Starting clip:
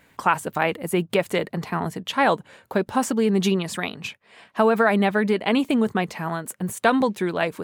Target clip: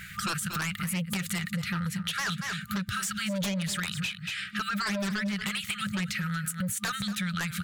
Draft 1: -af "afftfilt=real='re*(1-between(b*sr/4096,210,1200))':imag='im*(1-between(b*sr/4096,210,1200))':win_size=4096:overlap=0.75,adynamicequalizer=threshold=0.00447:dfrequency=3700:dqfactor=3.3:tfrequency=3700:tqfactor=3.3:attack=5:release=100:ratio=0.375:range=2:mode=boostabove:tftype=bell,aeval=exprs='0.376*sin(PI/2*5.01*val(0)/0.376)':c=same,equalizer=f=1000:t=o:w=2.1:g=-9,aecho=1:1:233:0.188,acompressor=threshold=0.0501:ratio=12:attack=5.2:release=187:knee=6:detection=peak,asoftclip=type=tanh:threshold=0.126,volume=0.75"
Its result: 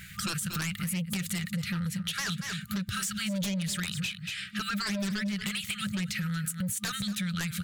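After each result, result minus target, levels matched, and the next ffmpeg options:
saturation: distortion +18 dB; 1 kHz band -4.5 dB
-af "afftfilt=real='re*(1-between(b*sr/4096,210,1200))':imag='im*(1-between(b*sr/4096,210,1200))':win_size=4096:overlap=0.75,adynamicequalizer=threshold=0.00447:dfrequency=3700:dqfactor=3.3:tfrequency=3700:tqfactor=3.3:attack=5:release=100:ratio=0.375:range=2:mode=boostabove:tftype=bell,aeval=exprs='0.376*sin(PI/2*5.01*val(0)/0.376)':c=same,equalizer=f=1000:t=o:w=2.1:g=-9,aecho=1:1:233:0.188,acompressor=threshold=0.0501:ratio=12:attack=5.2:release=187:knee=6:detection=peak,asoftclip=type=tanh:threshold=0.376,volume=0.75"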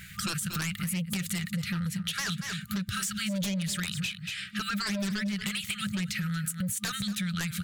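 1 kHz band -4.5 dB
-af "afftfilt=real='re*(1-between(b*sr/4096,210,1200))':imag='im*(1-between(b*sr/4096,210,1200))':win_size=4096:overlap=0.75,adynamicequalizer=threshold=0.00447:dfrequency=3700:dqfactor=3.3:tfrequency=3700:tqfactor=3.3:attack=5:release=100:ratio=0.375:range=2:mode=boostabove:tftype=bell,aeval=exprs='0.376*sin(PI/2*5.01*val(0)/0.376)':c=same,aecho=1:1:233:0.188,acompressor=threshold=0.0501:ratio=12:attack=5.2:release=187:knee=6:detection=peak,asoftclip=type=tanh:threshold=0.376,volume=0.75"

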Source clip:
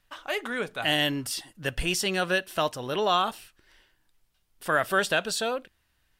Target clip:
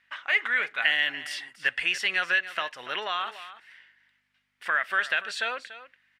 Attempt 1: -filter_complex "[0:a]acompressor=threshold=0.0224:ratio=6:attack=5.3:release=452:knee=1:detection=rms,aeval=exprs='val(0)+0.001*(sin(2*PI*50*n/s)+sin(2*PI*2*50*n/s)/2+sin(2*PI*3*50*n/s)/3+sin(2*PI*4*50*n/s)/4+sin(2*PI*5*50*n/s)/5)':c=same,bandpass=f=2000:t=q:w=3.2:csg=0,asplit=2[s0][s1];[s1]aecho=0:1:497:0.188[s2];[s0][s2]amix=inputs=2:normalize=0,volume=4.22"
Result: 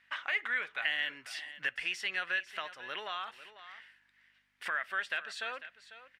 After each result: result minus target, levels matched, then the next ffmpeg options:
echo 209 ms late; compression: peak gain reduction +8.5 dB
-filter_complex "[0:a]acompressor=threshold=0.0224:ratio=6:attack=5.3:release=452:knee=1:detection=rms,aeval=exprs='val(0)+0.001*(sin(2*PI*50*n/s)+sin(2*PI*2*50*n/s)/2+sin(2*PI*3*50*n/s)/3+sin(2*PI*4*50*n/s)/4+sin(2*PI*5*50*n/s)/5)':c=same,bandpass=f=2000:t=q:w=3.2:csg=0,asplit=2[s0][s1];[s1]aecho=0:1:288:0.188[s2];[s0][s2]amix=inputs=2:normalize=0,volume=4.22"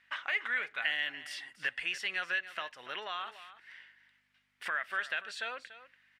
compression: peak gain reduction +8.5 dB
-filter_complex "[0:a]acompressor=threshold=0.075:ratio=6:attack=5.3:release=452:knee=1:detection=rms,aeval=exprs='val(0)+0.001*(sin(2*PI*50*n/s)+sin(2*PI*2*50*n/s)/2+sin(2*PI*3*50*n/s)/3+sin(2*PI*4*50*n/s)/4+sin(2*PI*5*50*n/s)/5)':c=same,bandpass=f=2000:t=q:w=3.2:csg=0,asplit=2[s0][s1];[s1]aecho=0:1:288:0.188[s2];[s0][s2]amix=inputs=2:normalize=0,volume=4.22"

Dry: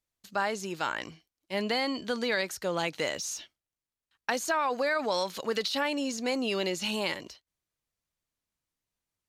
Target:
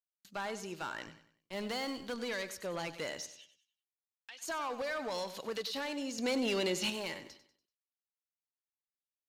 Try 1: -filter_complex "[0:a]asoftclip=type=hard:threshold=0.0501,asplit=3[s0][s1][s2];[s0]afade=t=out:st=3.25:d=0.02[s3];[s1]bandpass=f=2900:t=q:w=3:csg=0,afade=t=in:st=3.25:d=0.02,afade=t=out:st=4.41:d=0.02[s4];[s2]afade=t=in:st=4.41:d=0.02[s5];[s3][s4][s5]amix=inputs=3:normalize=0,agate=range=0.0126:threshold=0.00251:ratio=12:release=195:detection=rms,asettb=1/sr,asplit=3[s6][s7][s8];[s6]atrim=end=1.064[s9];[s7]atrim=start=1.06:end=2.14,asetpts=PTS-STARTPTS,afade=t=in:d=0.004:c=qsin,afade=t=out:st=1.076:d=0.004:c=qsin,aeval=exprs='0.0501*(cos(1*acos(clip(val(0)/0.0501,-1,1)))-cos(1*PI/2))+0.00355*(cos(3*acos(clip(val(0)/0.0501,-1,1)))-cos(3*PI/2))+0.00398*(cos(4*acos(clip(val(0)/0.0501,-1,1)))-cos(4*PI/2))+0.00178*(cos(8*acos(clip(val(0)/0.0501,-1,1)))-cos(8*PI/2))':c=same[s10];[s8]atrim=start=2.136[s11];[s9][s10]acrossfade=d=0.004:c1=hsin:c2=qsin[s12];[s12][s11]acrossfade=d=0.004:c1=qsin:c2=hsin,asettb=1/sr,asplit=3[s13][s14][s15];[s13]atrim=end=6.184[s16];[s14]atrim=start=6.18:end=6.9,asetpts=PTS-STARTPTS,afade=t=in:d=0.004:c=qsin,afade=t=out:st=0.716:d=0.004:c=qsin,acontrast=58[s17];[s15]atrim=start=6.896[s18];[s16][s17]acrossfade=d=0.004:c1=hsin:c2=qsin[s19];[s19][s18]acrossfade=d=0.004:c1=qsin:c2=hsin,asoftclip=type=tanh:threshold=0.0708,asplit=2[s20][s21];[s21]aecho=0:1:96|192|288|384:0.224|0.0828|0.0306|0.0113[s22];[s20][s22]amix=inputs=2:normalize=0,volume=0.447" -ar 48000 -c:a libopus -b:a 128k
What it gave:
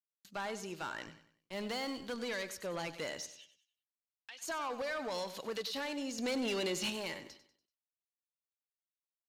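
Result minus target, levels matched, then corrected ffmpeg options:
saturation: distortion +15 dB
-filter_complex "[0:a]asoftclip=type=hard:threshold=0.0501,asplit=3[s0][s1][s2];[s0]afade=t=out:st=3.25:d=0.02[s3];[s1]bandpass=f=2900:t=q:w=3:csg=0,afade=t=in:st=3.25:d=0.02,afade=t=out:st=4.41:d=0.02[s4];[s2]afade=t=in:st=4.41:d=0.02[s5];[s3][s4][s5]amix=inputs=3:normalize=0,agate=range=0.0126:threshold=0.00251:ratio=12:release=195:detection=rms,asettb=1/sr,asplit=3[s6][s7][s8];[s6]atrim=end=1.064[s9];[s7]atrim=start=1.06:end=2.14,asetpts=PTS-STARTPTS,afade=t=in:d=0.004:c=qsin,afade=t=out:st=1.076:d=0.004:c=qsin,aeval=exprs='0.0501*(cos(1*acos(clip(val(0)/0.0501,-1,1)))-cos(1*PI/2))+0.00355*(cos(3*acos(clip(val(0)/0.0501,-1,1)))-cos(3*PI/2))+0.00398*(cos(4*acos(clip(val(0)/0.0501,-1,1)))-cos(4*PI/2))+0.00178*(cos(8*acos(clip(val(0)/0.0501,-1,1)))-cos(8*PI/2))':c=same[s10];[s8]atrim=start=2.136[s11];[s9][s10]acrossfade=d=0.004:c1=hsin:c2=qsin[s12];[s12][s11]acrossfade=d=0.004:c1=qsin:c2=hsin,asettb=1/sr,asplit=3[s13][s14][s15];[s13]atrim=end=6.184[s16];[s14]atrim=start=6.18:end=6.9,asetpts=PTS-STARTPTS,afade=t=in:d=0.004:c=qsin,afade=t=out:st=0.716:d=0.004:c=qsin,acontrast=58[s17];[s15]atrim=start=6.896[s18];[s16][s17]acrossfade=d=0.004:c1=hsin:c2=qsin[s19];[s19][s18]acrossfade=d=0.004:c1=qsin:c2=hsin,asoftclip=type=tanh:threshold=0.2,asplit=2[s20][s21];[s21]aecho=0:1:96|192|288|384:0.224|0.0828|0.0306|0.0113[s22];[s20][s22]amix=inputs=2:normalize=0,volume=0.447" -ar 48000 -c:a libopus -b:a 128k

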